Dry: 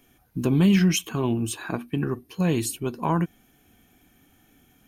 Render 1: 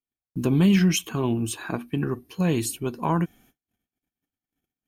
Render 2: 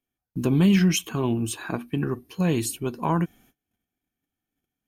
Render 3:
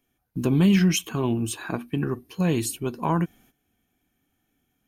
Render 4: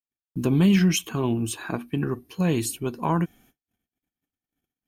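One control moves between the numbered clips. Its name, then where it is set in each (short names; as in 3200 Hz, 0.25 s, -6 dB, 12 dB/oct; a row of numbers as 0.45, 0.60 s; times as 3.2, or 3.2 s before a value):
gate, range: -39, -27, -14, -52 dB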